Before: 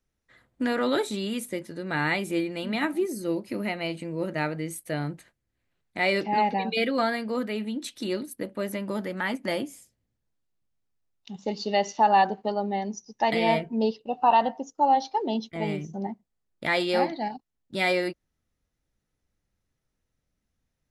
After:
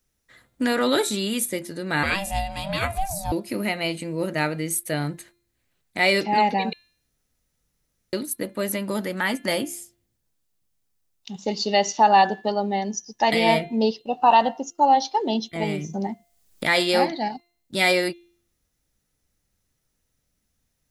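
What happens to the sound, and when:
0:02.03–0:03.32: ring modulation 390 Hz
0:06.73–0:08.13: fill with room tone
0:15.63–0:16.64: multiband upward and downward compressor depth 70%
whole clip: high-shelf EQ 4,600 Hz +11.5 dB; hum removal 346.3 Hz, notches 12; level +3.5 dB

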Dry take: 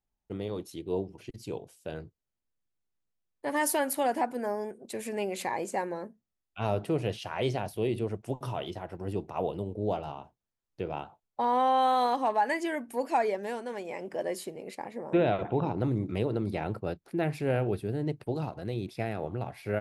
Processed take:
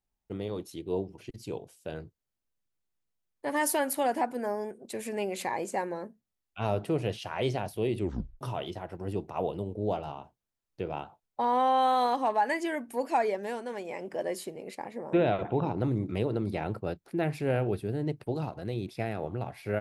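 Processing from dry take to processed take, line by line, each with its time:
0:07.98: tape stop 0.43 s

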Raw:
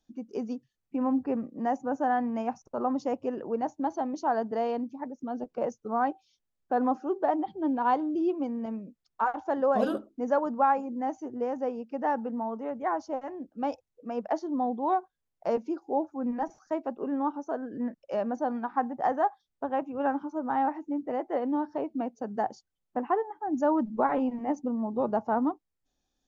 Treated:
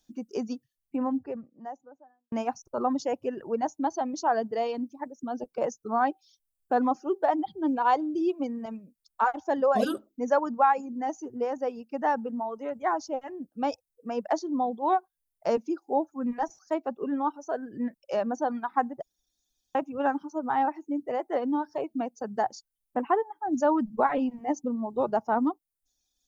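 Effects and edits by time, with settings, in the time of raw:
0:00.53–0:02.32: fade out and dull
0:19.02–0:19.75: fill with room tone
whole clip: high-shelf EQ 3,400 Hz +11 dB; reverb reduction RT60 1.8 s; level +2 dB

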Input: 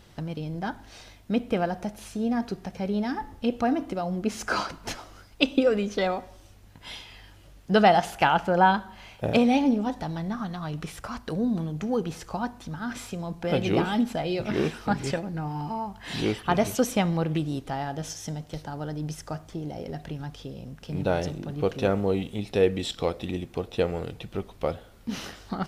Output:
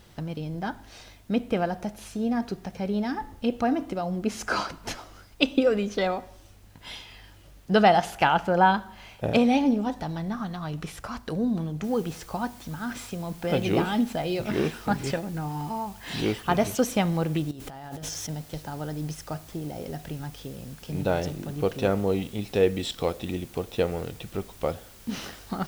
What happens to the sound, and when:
0:11.84: noise floor change −67 dB −52 dB
0:17.51–0:18.29: compressor whose output falls as the input rises −38 dBFS

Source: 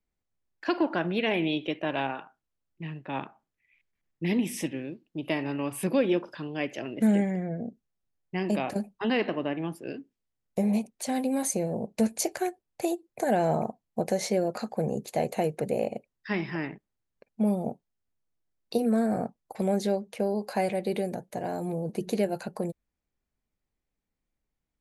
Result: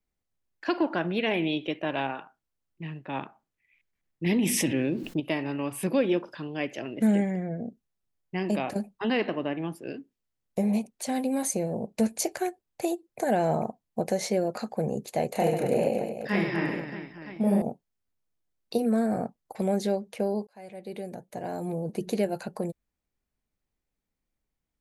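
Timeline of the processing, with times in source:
0:04.26–0:05.20: envelope flattener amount 70%
0:15.31–0:17.62: reverse bouncing-ball delay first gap 30 ms, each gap 1.5×, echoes 7, each echo −2 dB
0:20.47–0:21.71: fade in

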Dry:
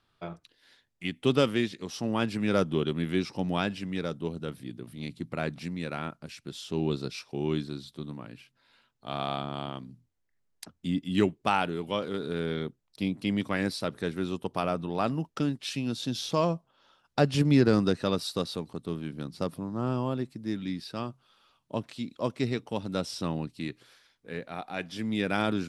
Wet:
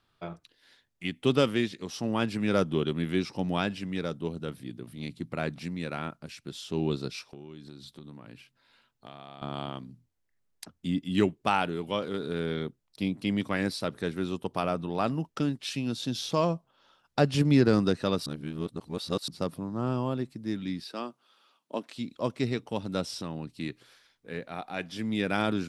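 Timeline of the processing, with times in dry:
0:07.30–0:09.42: downward compressor 8 to 1, threshold −41 dBFS
0:18.26–0:19.28: reverse
0:20.84–0:21.96: high-pass filter 230 Hz 24 dB per octave
0:23.17–0:23.58: downward compressor 2 to 1, threshold −34 dBFS

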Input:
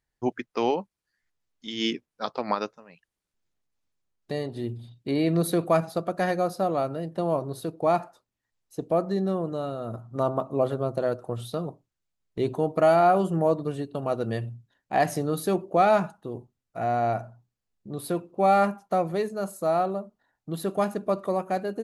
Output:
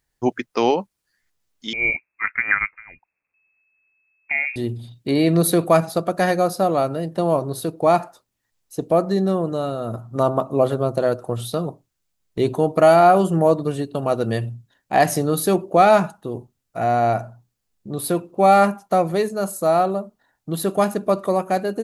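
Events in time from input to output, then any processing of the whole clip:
0:01.73–0:04.56: voice inversion scrambler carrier 2,600 Hz
whole clip: high-shelf EQ 5,400 Hz +6.5 dB; level +6.5 dB

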